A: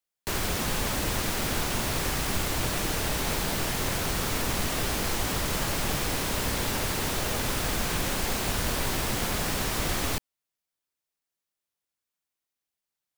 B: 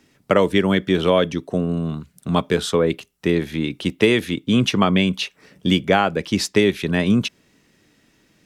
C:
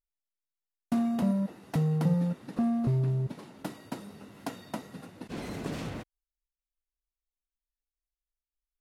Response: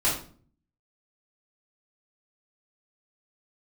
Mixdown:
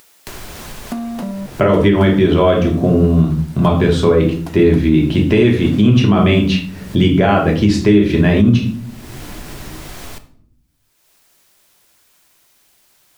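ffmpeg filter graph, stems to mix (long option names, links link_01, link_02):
-filter_complex "[0:a]volume=-18.5dB,asplit=2[link_01][link_02];[link_02]volume=-20.5dB[link_03];[1:a]aemphasis=mode=reproduction:type=bsi,adelay=1300,volume=1.5dB,asplit=2[link_04][link_05];[link_05]volume=-8.5dB[link_06];[2:a]highpass=210,volume=2.5dB[link_07];[3:a]atrim=start_sample=2205[link_08];[link_03][link_06]amix=inputs=2:normalize=0[link_09];[link_09][link_08]afir=irnorm=-1:irlink=0[link_10];[link_01][link_04][link_07][link_10]amix=inputs=4:normalize=0,acompressor=mode=upward:threshold=-18dB:ratio=2.5,alimiter=limit=-2.5dB:level=0:latency=1:release=151"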